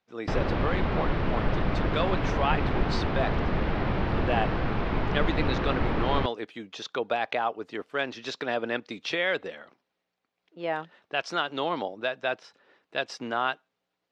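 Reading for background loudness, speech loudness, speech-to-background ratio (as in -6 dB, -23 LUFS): -29.0 LUFS, -31.5 LUFS, -2.5 dB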